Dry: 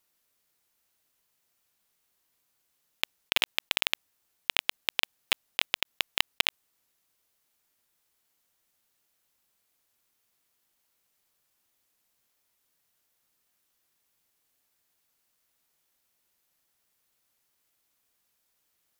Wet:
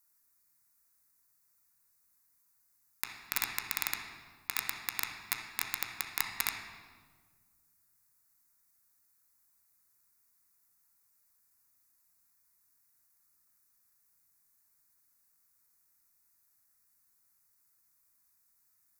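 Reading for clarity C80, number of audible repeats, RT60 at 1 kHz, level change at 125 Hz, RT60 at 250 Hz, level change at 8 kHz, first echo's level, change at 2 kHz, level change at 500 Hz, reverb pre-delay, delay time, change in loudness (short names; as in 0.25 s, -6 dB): 6.5 dB, none, 1.4 s, -1.0 dB, 2.1 s, +2.0 dB, none, -6.5 dB, -13.0 dB, 3 ms, none, -6.0 dB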